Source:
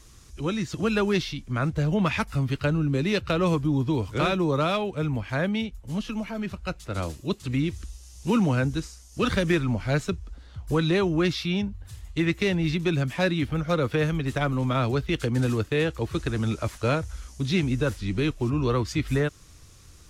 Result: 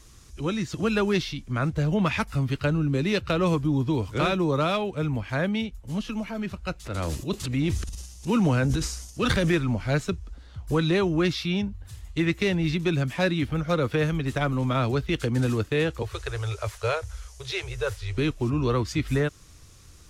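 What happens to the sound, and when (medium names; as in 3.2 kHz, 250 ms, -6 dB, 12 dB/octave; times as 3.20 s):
6.84–9.54 s: transient shaper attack -2 dB, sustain +11 dB
16.02–18.18 s: elliptic band-stop 110–410 Hz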